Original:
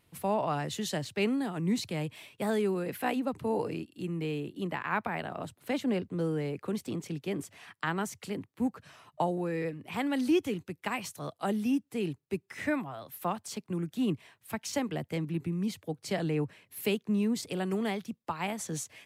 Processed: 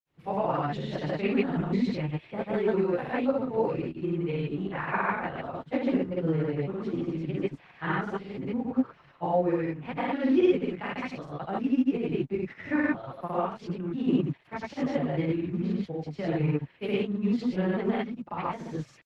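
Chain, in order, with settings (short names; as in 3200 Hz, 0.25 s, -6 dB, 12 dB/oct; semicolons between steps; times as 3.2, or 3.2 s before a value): in parallel at -3 dB: crossover distortion -49.5 dBFS; on the sum: non-linear reverb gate 0.13 s rising, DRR -7.5 dB; grains, spray 0.1 s, pitch spread up and down by 0 st; air absorption 310 m; gain -6 dB; Opus 16 kbps 48000 Hz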